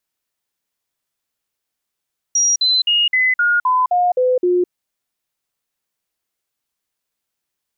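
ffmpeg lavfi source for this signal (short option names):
-f lavfi -i "aevalsrc='0.251*clip(min(mod(t,0.26),0.21-mod(t,0.26))/0.005,0,1)*sin(2*PI*5720*pow(2,-floor(t/0.26)/2)*mod(t,0.26))':d=2.34:s=44100"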